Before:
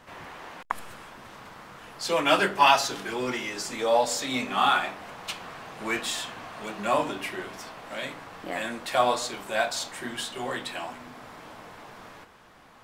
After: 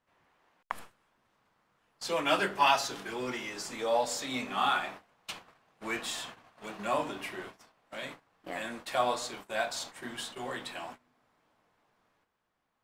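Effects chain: gate -38 dBFS, range -21 dB; gain -6 dB

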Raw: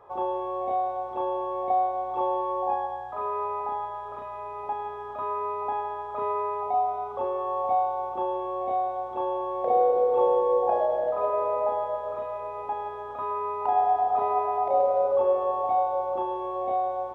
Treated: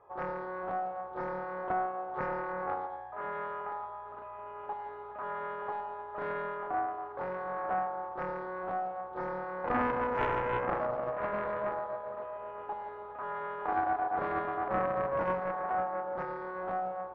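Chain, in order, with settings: LPF 2800 Hz 24 dB/oct; Doppler distortion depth 0.83 ms; gain -7.5 dB

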